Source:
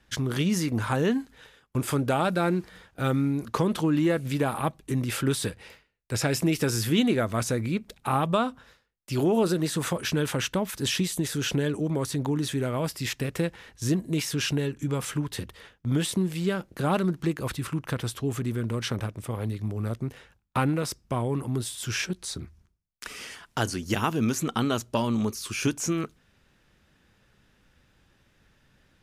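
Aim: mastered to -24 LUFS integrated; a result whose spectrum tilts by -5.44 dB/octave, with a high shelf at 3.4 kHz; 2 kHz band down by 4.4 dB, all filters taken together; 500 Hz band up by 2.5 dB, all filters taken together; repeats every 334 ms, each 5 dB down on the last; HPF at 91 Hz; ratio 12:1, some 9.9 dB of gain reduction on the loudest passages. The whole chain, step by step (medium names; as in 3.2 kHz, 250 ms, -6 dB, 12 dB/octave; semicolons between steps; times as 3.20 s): high-pass 91 Hz; peaking EQ 500 Hz +3.5 dB; peaking EQ 2 kHz -5 dB; treble shelf 3.4 kHz -4.5 dB; compression 12:1, threshold -28 dBFS; feedback delay 334 ms, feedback 56%, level -5 dB; trim +9 dB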